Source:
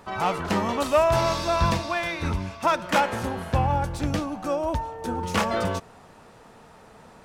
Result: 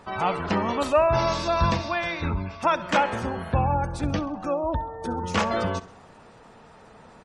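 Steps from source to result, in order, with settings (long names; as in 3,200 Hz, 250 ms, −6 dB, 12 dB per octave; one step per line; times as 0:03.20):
gate on every frequency bin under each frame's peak −30 dB strong
repeating echo 66 ms, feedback 50%, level −18.5 dB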